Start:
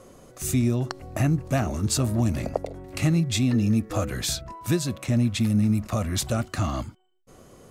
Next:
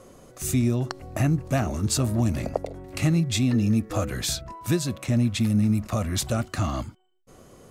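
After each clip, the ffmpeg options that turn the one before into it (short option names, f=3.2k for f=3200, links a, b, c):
-af anull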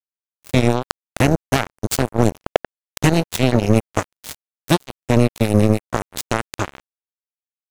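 -af "acrusher=bits=2:mix=0:aa=0.5,volume=8.5dB"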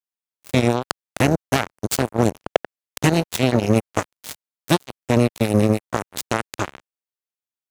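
-af "highpass=f=100:p=1,volume=-1dB"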